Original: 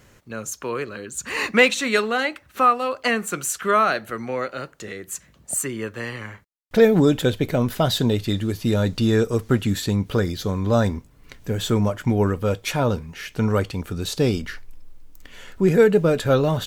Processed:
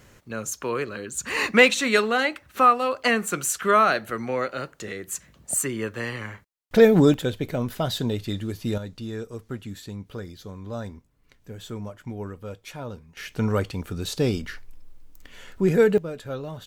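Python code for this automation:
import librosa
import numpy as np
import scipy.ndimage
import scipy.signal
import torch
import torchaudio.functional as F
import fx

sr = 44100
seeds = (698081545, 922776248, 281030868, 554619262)

y = fx.gain(x, sr, db=fx.steps((0.0, 0.0), (7.14, -6.0), (8.78, -14.5), (13.17, -3.0), (15.98, -14.5)))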